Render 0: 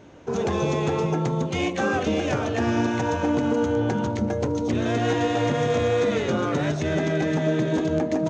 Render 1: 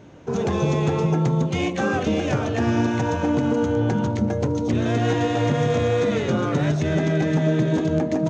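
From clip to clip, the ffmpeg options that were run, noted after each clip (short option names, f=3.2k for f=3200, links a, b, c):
-af "equalizer=f=140:t=o:w=1.3:g=6"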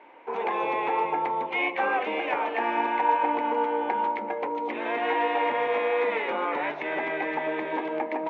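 -af "highpass=f=410:w=0.5412,highpass=f=410:w=1.3066,equalizer=f=410:t=q:w=4:g=-6,equalizer=f=620:t=q:w=4:g=-6,equalizer=f=910:t=q:w=4:g=10,equalizer=f=1.4k:t=q:w=4:g=-5,equalizer=f=2.2k:t=q:w=4:g=8,lowpass=f=2.7k:w=0.5412,lowpass=f=2.7k:w=1.3066"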